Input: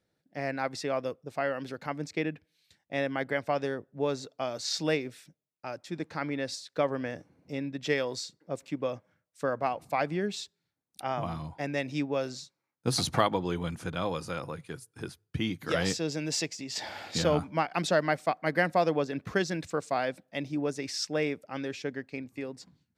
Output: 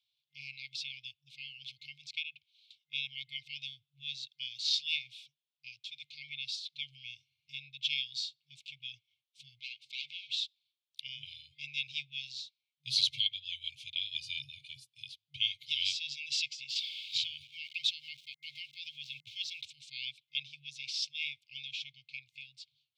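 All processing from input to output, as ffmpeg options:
-filter_complex "[0:a]asettb=1/sr,asplit=3[a][b][c];[a]atrim=end=9.594[d];[b]atrim=start=9.59:end=10.3,asetpts=PTS-STARTPTS,afade=t=in:d=0.004:c=qsin,afade=t=out:st=0.706:d=0.004:c=qsin,aemphasis=mode=production:type=50kf,volume=29dB,asoftclip=hard,volume=-29dB,highpass=200,lowpass=5.2k[e];[c]atrim=start=10.296[f];[d][e]acrossfade=d=0.004:c1=hsin:c2=qsin[g];[g][f]acrossfade=d=0.004:c1=qsin:c2=hsin,asettb=1/sr,asplit=3[h][i][j];[h]atrim=end=14.154[k];[i]atrim=start=14.15:end=14.88,asetpts=PTS-STARTPTS,afade=t=in:d=0.004:c=qsin,afade=t=out:st=0.726:d=0.004:c=qsin,lowshelf=f=190:g=6.5,aecho=1:1:1.7:0.92,atrim=end_sample=32193[l];[j]atrim=start=14.876[m];[k][l]acrossfade=d=0.004:c1=hsin:c2=qsin[n];[n][m]acrossfade=d=0.004:c1=qsin:c2=hsin,asettb=1/sr,asplit=3[o][p][q];[o]atrim=end=16.694[r];[p]atrim=start=16.69:end=19.65,asetpts=PTS-STARTPTS,afade=t=in:d=0.004:c=qsin,afade=t=out:st=2.956:d=0.004:c=qsin,aeval=exprs='val(0)*gte(abs(val(0)),0.00473)':c=same,acompressor=threshold=-27dB:ratio=2.5:attack=3.2:release=140:knee=1:detection=peak[s];[q]atrim=start=19.646[t];[r][s]acrossfade=d=0.004:c1=hsin:c2=qsin[u];[u][t]acrossfade=d=0.004:c1=qsin:c2=hsin,highshelf=f=2.3k:t=q:w=3:g=12.5,afftfilt=real='re*(1-between(b*sr/4096,150,2100))':imag='im*(1-between(b*sr/4096,150,2100))':win_size=4096:overlap=0.75,acrossover=split=190 3900:gain=0.0794 1 0.0794[v][w][x];[v][w][x]amix=inputs=3:normalize=0,volume=-7dB"

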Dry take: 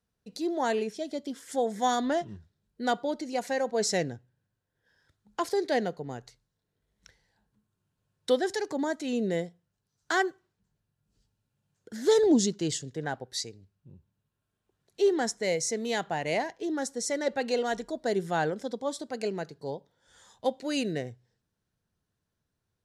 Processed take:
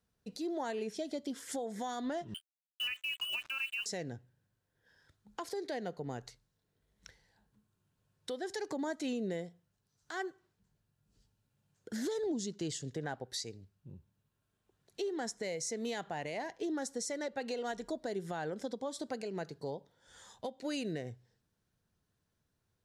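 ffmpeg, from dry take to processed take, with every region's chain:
-filter_complex "[0:a]asettb=1/sr,asplit=3[a][b][c];[a]atrim=end=2.344[d];[b]atrim=start=2.34:end=3.86,asetpts=PTS-STARTPTS,afade=t=in:d=0.004:c=qsin,afade=t=out:st=1.516:d=0.004:c=qsin,lowpass=f=2.7k:t=q:w=0.5098,lowpass=f=2.7k:t=q:w=0.6013,lowpass=f=2.7k:t=q:w=0.9,lowpass=f=2.7k:t=q:w=2.563,afreqshift=-3200,acrusher=bits=6:mix=0:aa=0.5[e];[c]atrim=start=3.856[f];[d][e]acrossfade=d=0.004:c1=hsin:c2=qsin[g];[g][f]acrossfade=d=0.004:c1=qsin:c2=hsin,acompressor=threshold=-34dB:ratio=6,alimiter=level_in=5.5dB:limit=-24dB:level=0:latency=1:release=130,volume=-5.5dB,volume=1dB"

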